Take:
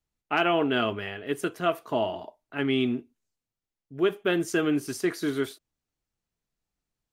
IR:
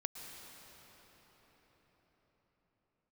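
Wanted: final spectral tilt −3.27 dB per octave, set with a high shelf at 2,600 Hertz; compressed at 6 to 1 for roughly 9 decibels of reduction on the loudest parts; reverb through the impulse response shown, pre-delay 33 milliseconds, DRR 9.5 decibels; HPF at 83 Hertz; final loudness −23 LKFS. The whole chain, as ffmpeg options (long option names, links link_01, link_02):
-filter_complex "[0:a]highpass=83,highshelf=frequency=2600:gain=9,acompressor=threshold=-28dB:ratio=6,asplit=2[link_01][link_02];[1:a]atrim=start_sample=2205,adelay=33[link_03];[link_02][link_03]afir=irnorm=-1:irlink=0,volume=-9dB[link_04];[link_01][link_04]amix=inputs=2:normalize=0,volume=9.5dB"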